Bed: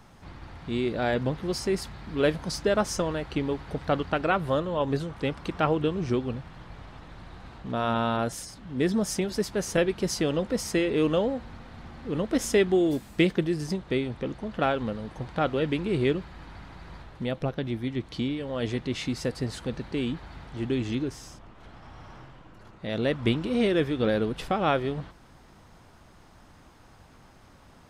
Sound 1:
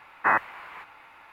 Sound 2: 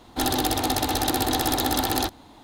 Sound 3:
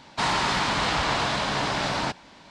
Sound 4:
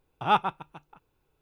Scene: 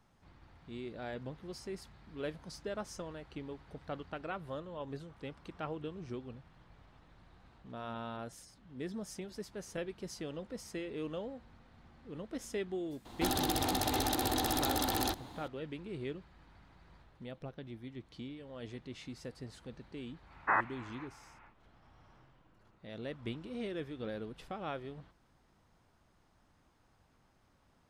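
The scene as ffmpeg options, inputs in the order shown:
ffmpeg -i bed.wav -i cue0.wav -i cue1.wav -filter_complex "[0:a]volume=-16dB[link_01];[2:a]acompressor=threshold=-27dB:ratio=6:attack=3.2:release=140:knee=1:detection=peak[link_02];[1:a]lowpass=2300[link_03];[link_02]atrim=end=2.43,asetpts=PTS-STARTPTS,volume=-1.5dB,afade=type=in:duration=0.004:curve=hsin,afade=type=out:start_time=2.426:duration=0.004:curve=hsin,adelay=13050[link_04];[link_03]atrim=end=1.32,asetpts=PTS-STARTPTS,volume=-7.5dB,afade=type=in:duration=0.1,afade=type=out:start_time=1.22:duration=0.1,adelay=20230[link_05];[link_01][link_04][link_05]amix=inputs=3:normalize=0" out.wav

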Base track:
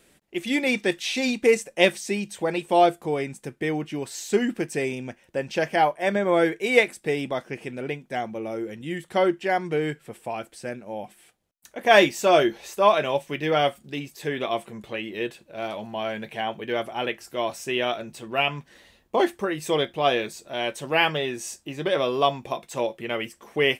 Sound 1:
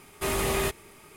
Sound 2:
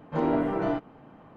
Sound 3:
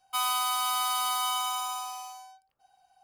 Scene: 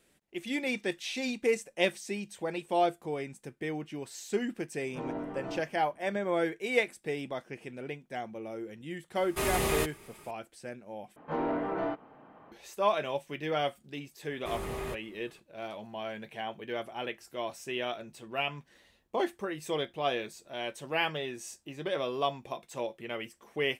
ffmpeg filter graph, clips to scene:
ffmpeg -i bed.wav -i cue0.wav -i cue1.wav -filter_complex "[2:a]asplit=2[link_01][link_02];[1:a]asplit=2[link_03][link_04];[0:a]volume=-9dB[link_05];[link_02]asplit=2[link_06][link_07];[link_07]highpass=frequency=720:poles=1,volume=15dB,asoftclip=type=tanh:threshold=-13.5dB[link_08];[link_06][link_08]amix=inputs=2:normalize=0,lowpass=frequency=1700:poles=1,volume=-6dB[link_09];[link_04]highshelf=frequency=2400:gain=-10.5[link_10];[link_05]asplit=2[link_11][link_12];[link_11]atrim=end=11.164[link_13];[link_09]atrim=end=1.36,asetpts=PTS-STARTPTS,volume=-8dB[link_14];[link_12]atrim=start=12.516[link_15];[link_01]atrim=end=1.36,asetpts=PTS-STARTPTS,volume=-12dB,afade=type=in:duration=0.004:curve=hsin,afade=type=out:start_time=1.356:duration=0.004:curve=hsin,adelay=4820[link_16];[link_03]atrim=end=1.16,asetpts=PTS-STARTPTS,volume=-2.5dB,afade=type=in:duration=0.004:curve=hsin,afade=type=out:start_time=1.156:duration=0.004:curve=hsin,adelay=9150[link_17];[link_10]atrim=end=1.16,asetpts=PTS-STARTPTS,volume=-8.5dB,afade=type=in:duration=0.004:curve=hsin,afade=type=out:start_time=1.156:duration=0.004:curve=hsin,adelay=14240[link_18];[link_13][link_14]acrossfade=duration=0.004:curve1=hsin:curve2=hsin[link_19];[link_19][link_15]acrossfade=duration=0.004:curve1=hsin:curve2=hsin[link_20];[link_20][link_16][link_17][link_18]amix=inputs=4:normalize=0" out.wav

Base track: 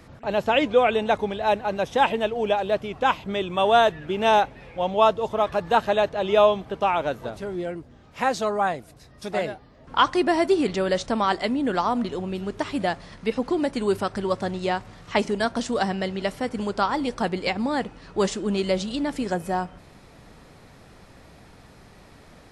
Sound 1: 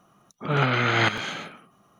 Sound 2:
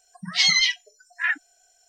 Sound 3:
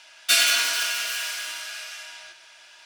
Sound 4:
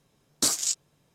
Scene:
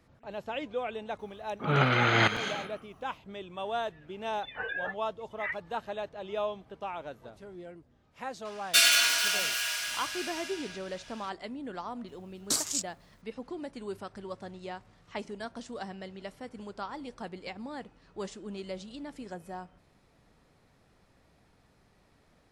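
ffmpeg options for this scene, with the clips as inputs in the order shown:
ffmpeg -i bed.wav -i cue0.wav -i cue1.wav -i cue2.wav -i cue3.wav -filter_complex "[0:a]volume=-15.5dB[link_01];[2:a]lowpass=frequency=3100:width_type=q:width=0.5098,lowpass=frequency=3100:width_type=q:width=0.6013,lowpass=frequency=3100:width_type=q:width=0.9,lowpass=frequency=3100:width_type=q:width=2.563,afreqshift=-3700[link_02];[4:a]acrusher=bits=10:mix=0:aa=0.000001[link_03];[1:a]atrim=end=1.99,asetpts=PTS-STARTPTS,volume=-2.5dB,afade=type=in:duration=0.004:curve=hsin,afade=type=out:start_time=1.986:duration=0.004:curve=hsin,adelay=1190[link_04];[link_02]atrim=end=1.88,asetpts=PTS-STARTPTS,volume=-12dB,afade=type=in:duration=0.004:curve=hsin,afade=type=out:start_time=1.876:duration=0.004:curve=hsin,adelay=4200[link_05];[3:a]atrim=end=2.85,asetpts=PTS-STARTPTS,volume=-2.5dB,afade=type=in:duration=0.004:curve=hsin,afade=type=out:start_time=2.846:duration=0.004:curve=hsin,adelay=8450[link_06];[link_03]atrim=end=1.14,asetpts=PTS-STARTPTS,volume=-5dB,afade=type=in:duration=0.004:curve=hsin,afade=type=out:start_time=1.136:duration=0.004:curve=hsin,adelay=12080[link_07];[link_01][link_04][link_05][link_06][link_07]amix=inputs=5:normalize=0" out.wav

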